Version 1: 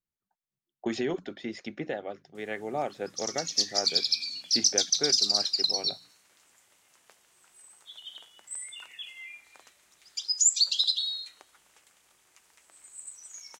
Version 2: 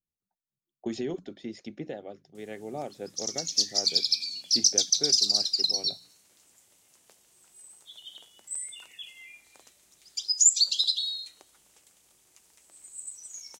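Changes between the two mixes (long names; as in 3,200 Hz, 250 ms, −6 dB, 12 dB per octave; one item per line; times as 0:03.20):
background +4.5 dB
master: add parametric band 1,500 Hz −11 dB 2.4 octaves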